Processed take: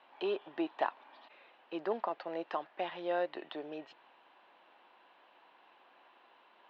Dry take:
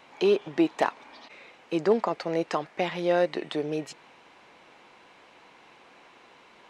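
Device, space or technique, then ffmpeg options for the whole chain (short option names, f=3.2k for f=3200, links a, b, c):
phone earpiece: -af "highpass=430,equalizer=f=460:t=q:w=4:g=-7,equalizer=f=1.3k:t=q:w=4:g=-3,equalizer=f=2.2k:t=q:w=4:g=-10,lowpass=f=3.3k:w=0.5412,lowpass=f=3.3k:w=1.3066,volume=-5.5dB"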